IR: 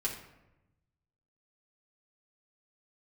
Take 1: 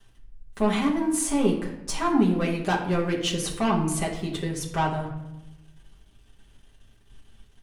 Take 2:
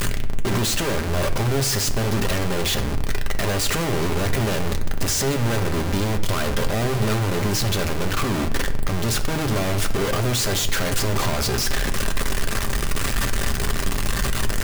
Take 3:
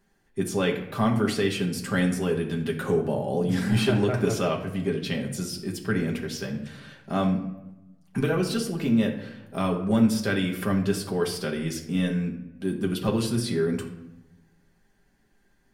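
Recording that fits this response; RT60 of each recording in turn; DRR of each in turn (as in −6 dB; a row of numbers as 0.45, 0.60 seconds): 1; 0.95, 1.0, 0.95 seconds; −4.0, 5.0, 0.0 decibels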